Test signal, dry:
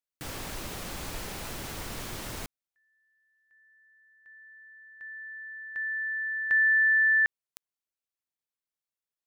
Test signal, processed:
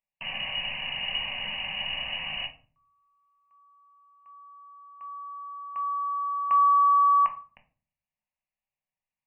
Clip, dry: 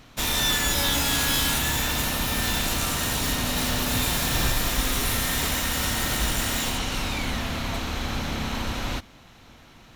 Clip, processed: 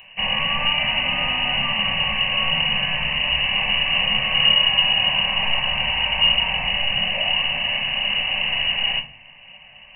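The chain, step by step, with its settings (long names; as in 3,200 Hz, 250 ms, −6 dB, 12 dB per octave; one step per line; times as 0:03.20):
voice inversion scrambler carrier 2,900 Hz
phaser with its sweep stopped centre 1,400 Hz, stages 6
rectangular room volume 300 cubic metres, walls furnished, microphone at 1.1 metres
level +4.5 dB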